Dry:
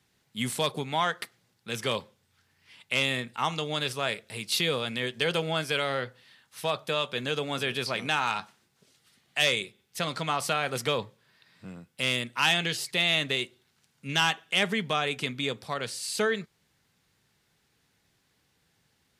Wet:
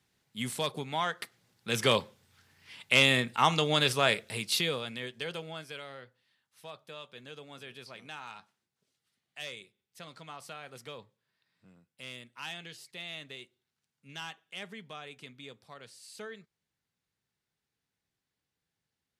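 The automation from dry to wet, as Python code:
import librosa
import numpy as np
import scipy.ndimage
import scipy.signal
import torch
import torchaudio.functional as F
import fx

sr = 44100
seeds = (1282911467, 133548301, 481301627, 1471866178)

y = fx.gain(x, sr, db=fx.line((1.13, -4.5), (1.81, 4.0), (4.22, 4.0), (4.81, -6.0), (5.98, -17.0)))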